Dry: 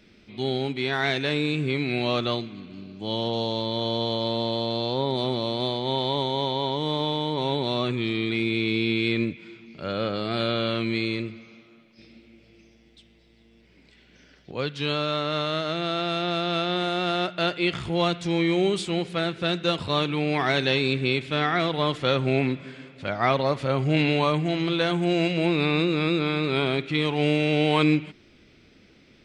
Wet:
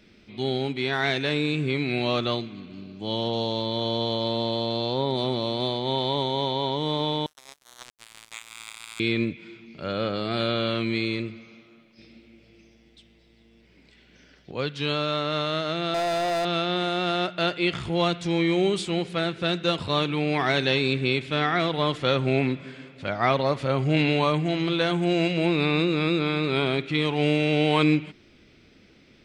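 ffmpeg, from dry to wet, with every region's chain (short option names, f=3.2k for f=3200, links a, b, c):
-filter_complex "[0:a]asettb=1/sr,asplit=3[a][b][c];[a]atrim=end=7.264[d];[b]atrim=start=7.26:end=9,asetpts=PTS-STARTPTS,afade=t=in:d=0.004:c=qsin,afade=t=out:st=1.736:d=0.004:c=qsin,highpass=f=1k:w=0.5412,highpass=f=1k:w=1.3066,acrossover=split=2600[e][f];[f]acompressor=threshold=-39dB:ratio=4:attack=1:release=60[g];[e][g]amix=inputs=2:normalize=0,acrusher=bits=3:mix=0:aa=0.5[h];[c]atrim=start=8.996[i];[d][h]acrossfade=d=0.004:c1=hsin:c2=qsin[j];[j][i]acrossfade=d=0.004:c1=qsin:c2=hsin,asettb=1/sr,asplit=3[k][l][m];[k]atrim=end=15.944[n];[l]atrim=start=15.94:end=16.45,asetpts=PTS-STARTPTS,afade=t=in:d=0.004:c=qsin,afade=t=out:st=0.506:d=0.004:c=qsin,equalizer=f=740:w=1.1:g=12,bandreject=f=60:t=h:w=6,bandreject=f=120:t=h:w=6,bandreject=f=180:t=h:w=6,bandreject=f=240:t=h:w=6,bandreject=f=300:t=h:w=6,bandreject=f=360:t=h:w=6,bandreject=f=420:t=h:w=6,volume=23dB,asoftclip=hard,volume=-23dB[o];[m]atrim=start=16.446[p];[n][o]acrossfade=d=0.004:c1=hsin:c2=qsin[q];[q][p]acrossfade=d=0.004:c1=qsin:c2=hsin"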